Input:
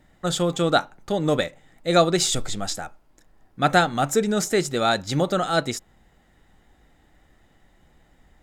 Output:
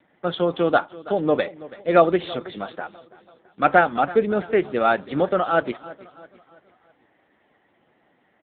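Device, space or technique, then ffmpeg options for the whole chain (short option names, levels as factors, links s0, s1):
telephone: -af "highpass=260,lowpass=3200,aecho=1:1:330|660|990|1320:0.119|0.0547|0.0251|0.0116,volume=1.5" -ar 8000 -c:a libopencore_amrnb -b:a 6700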